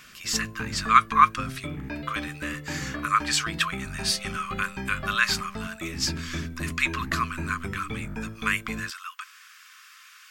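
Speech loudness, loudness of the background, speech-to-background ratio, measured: -26.5 LUFS, -36.0 LUFS, 9.5 dB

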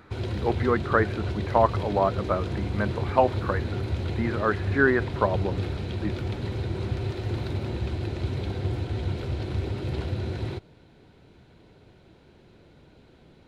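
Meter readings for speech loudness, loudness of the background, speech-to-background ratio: -26.5 LUFS, -31.0 LUFS, 4.5 dB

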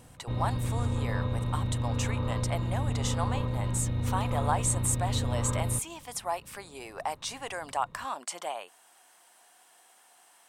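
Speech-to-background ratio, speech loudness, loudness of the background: -3.0 dB, -34.5 LUFS, -31.5 LUFS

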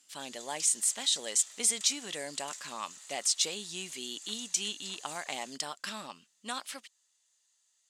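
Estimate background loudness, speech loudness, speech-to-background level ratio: -45.5 LUFS, -32.0 LUFS, 13.5 dB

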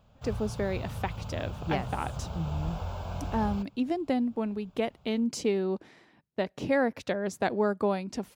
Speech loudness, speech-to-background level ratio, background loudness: -31.5 LUFS, 6.5 dB, -38.0 LUFS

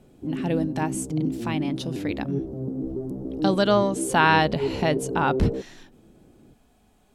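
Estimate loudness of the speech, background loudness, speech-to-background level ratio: -25.0 LUFS, -30.0 LUFS, 5.0 dB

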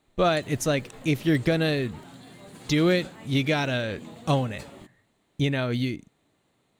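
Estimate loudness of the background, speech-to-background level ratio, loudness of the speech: -45.0 LUFS, 19.0 dB, -26.0 LUFS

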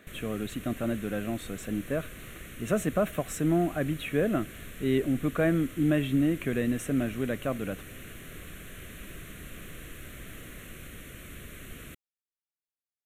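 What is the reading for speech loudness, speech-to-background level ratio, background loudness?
-29.5 LUFS, 15.5 dB, -45.0 LUFS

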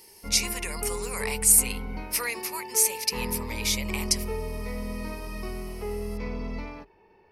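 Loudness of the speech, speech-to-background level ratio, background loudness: -25.0 LUFS, 10.5 dB, -35.5 LUFS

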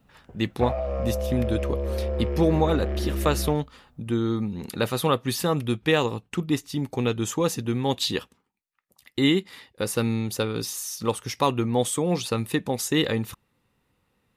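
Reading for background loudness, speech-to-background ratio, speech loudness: -29.0 LUFS, 3.0 dB, -26.0 LUFS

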